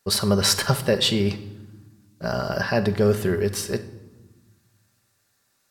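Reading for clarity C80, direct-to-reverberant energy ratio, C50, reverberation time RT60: 16.0 dB, 7.5 dB, 13.0 dB, 1.4 s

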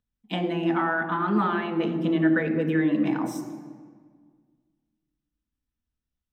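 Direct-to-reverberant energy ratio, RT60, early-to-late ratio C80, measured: 3.5 dB, 1.7 s, 10.5 dB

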